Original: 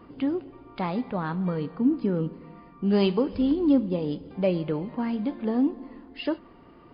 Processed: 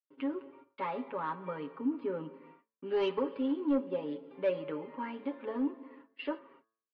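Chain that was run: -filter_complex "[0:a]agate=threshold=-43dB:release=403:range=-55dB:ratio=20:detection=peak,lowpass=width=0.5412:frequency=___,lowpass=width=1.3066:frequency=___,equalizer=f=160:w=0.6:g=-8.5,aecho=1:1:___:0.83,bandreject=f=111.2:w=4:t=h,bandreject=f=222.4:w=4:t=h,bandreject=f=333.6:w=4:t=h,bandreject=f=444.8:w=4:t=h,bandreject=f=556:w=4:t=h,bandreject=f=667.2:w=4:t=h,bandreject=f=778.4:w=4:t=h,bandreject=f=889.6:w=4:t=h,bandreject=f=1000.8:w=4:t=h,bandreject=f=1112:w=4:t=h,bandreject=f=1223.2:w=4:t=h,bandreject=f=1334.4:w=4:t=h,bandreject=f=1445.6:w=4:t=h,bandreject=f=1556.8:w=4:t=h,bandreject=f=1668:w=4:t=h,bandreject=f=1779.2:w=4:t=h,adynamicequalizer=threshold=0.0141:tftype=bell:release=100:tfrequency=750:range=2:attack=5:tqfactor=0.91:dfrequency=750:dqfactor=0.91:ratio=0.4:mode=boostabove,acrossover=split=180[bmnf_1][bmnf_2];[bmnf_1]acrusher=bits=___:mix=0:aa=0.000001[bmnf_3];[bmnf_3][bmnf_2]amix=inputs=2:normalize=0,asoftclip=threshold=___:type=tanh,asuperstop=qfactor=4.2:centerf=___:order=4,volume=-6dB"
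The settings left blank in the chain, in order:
3000, 3000, 7.3, 3, -15dB, 730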